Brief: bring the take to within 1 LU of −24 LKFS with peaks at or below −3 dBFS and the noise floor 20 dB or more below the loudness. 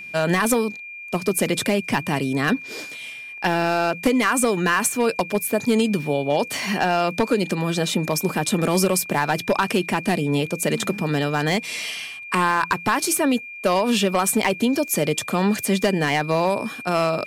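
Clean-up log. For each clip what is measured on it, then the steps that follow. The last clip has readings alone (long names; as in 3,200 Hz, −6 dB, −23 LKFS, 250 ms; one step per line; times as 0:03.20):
share of clipped samples 0.6%; peaks flattened at −11.0 dBFS; interfering tone 2,400 Hz; level of the tone −34 dBFS; integrated loudness −21.5 LKFS; sample peak −11.0 dBFS; target loudness −24.0 LKFS
→ clipped peaks rebuilt −11 dBFS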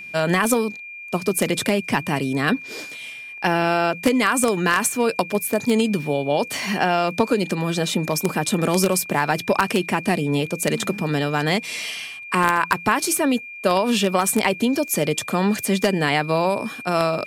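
share of clipped samples 0.0%; interfering tone 2,400 Hz; level of the tone −34 dBFS
→ notch filter 2,400 Hz, Q 30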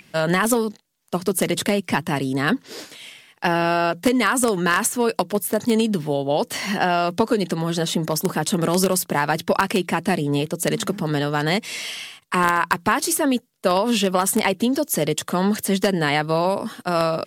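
interfering tone none found; integrated loudness −21.5 LKFS; sample peak −2.0 dBFS; target loudness −24.0 LKFS
→ level −2.5 dB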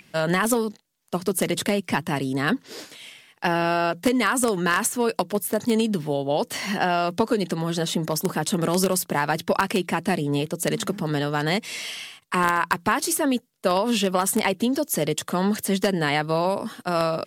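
integrated loudness −24.0 LKFS; sample peak −4.5 dBFS; background noise floor −60 dBFS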